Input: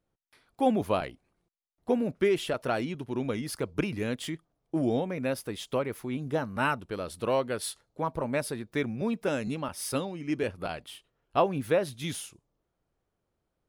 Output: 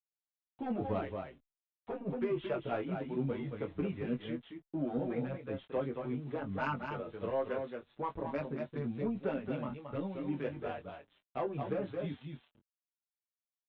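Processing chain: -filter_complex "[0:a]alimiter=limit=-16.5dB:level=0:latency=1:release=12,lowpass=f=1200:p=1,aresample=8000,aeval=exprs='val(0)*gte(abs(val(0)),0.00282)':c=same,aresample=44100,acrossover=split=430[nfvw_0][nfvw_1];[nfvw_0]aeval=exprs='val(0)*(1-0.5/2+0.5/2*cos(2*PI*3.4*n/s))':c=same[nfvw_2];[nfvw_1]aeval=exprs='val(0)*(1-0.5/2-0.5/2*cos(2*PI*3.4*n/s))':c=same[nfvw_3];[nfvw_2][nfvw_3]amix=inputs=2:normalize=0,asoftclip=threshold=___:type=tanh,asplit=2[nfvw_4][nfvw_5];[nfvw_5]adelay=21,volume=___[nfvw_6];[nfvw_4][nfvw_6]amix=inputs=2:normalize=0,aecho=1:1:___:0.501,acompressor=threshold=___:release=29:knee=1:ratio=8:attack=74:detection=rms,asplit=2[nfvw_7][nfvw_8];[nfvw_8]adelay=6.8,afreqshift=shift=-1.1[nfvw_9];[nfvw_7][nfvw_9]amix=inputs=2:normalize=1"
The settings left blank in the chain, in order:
-22.5dB, -7dB, 223, -32dB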